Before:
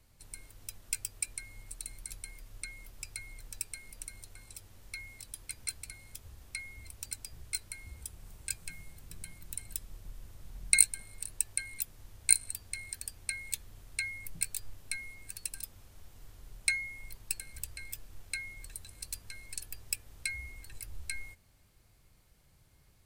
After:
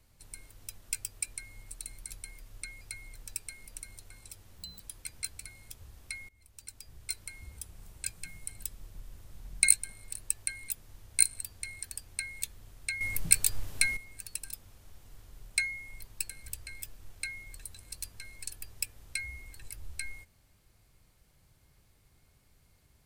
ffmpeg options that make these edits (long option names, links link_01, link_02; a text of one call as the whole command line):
ffmpeg -i in.wav -filter_complex "[0:a]asplit=8[link_01][link_02][link_03][link_04][link_05][link_06][link_07][link_08];[link_01]atrim=end=2.812[link_09];[link_02]atrim=start=3.058:end=4.834[link_10];[link_03]atrim=start=4.83:end=5.24,asetpts=PTS-STARTPTS,asetrate=82908,aresample=44100[link_11];[link_04]atrim=start=5.236:end=6.73,asetpts=PTS-STARTPTS,afade=type=out:start_time=1.49:duration=0.004:curve=hsin:silence=0.0841395[link_12];[link_05]atrim=start=6.73:end=8.902,asetpts=PTS-STARTPTS,afade=type=in:duration=0.93:silence=0.0841395[link_13];[link_06]atrim=start=9.558:end=14.112[link_14];[link_07]atrim=start=14.108:end=15.072,asetpts=PTS-STARTPTS,volume=11dB[link_15];[link_08]atrim=start=15.068[link_16];[link_09][link_10]acrossfade=duration=0.004:curve1=hsin:curve2=hsin[link_17];[link_17][link_11]acrossfade=duration=0.004:curve1=hsin:curve2=hsin[link_18];[link_12][link_13]concat=n=2:v=0:a=1[link_19];[link_18][link_19]acrossfade=duration=0.004:curve1=hsin:curve2=hsin[link_20];[link_20][link_14]acrossfade=duration=0.004:curve1=hsin:curve2=hsin[link_21];[link_21][link_15]acrossfade=duration=0.004:curve1=hsin:curve2=hsin[link_22];[link_22][link_16]acrossfade=duration=0.004:curve1=hsin:curve2=hsin" out.wav